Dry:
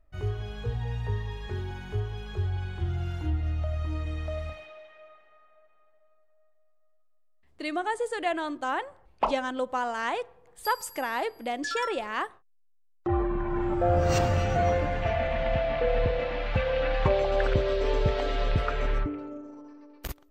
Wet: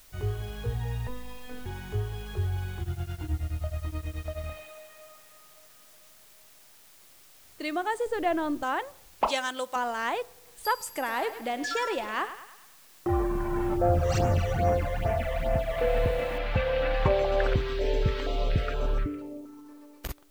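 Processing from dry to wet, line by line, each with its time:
1.07–1.66 s: robot voice 249 Hz
2.80–4.44 s: tremolo of two beating tones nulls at 9.4 Hz
8.06–8.63 s: tilt EQ -3 dB/octave
9.27–9.76 s: tilt EQ +4 dB/octave
10.85–13.11 s: thinning echo 104 ms, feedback 54%, level -11 dB
13.76–15.78 s: phase shifter stages 12, 2.4 Hz, lowest notch 240–4400 Hz
16.38 s: noise floor step -56 dB -67 dB
17.55–19.69 s: step-sequenced notch 4.2 Hz 580–2000 Hz

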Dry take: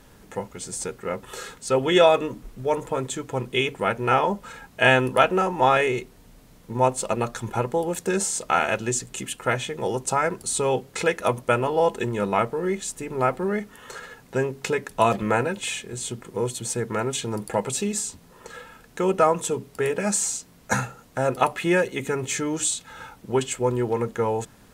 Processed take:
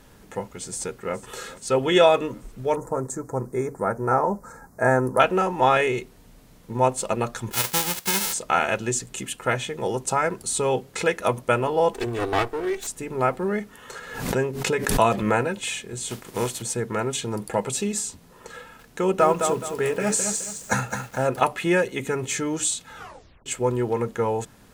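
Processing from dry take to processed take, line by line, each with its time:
0.69–1.17 s: echo throw 420 ms, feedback 65%, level -18 dB
2.76–5.20 s: Butterworth band-stop 3 kHz, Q 0.66
7.51–8.32 s: formants flattened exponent 0.1
11.93–12.87 s: comb filter that takes the minimum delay 2.6 ms
13.98–15.46 s: swell ahead of each attack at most 62 dB/s
16.08–16.61 s: spectral contrast reduction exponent 0.63
18.58–21.40 s: bit-crushed delay 211 ms, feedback 35%, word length 7-bit, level -6 dB
22.97 s: tape stop 0.49 s

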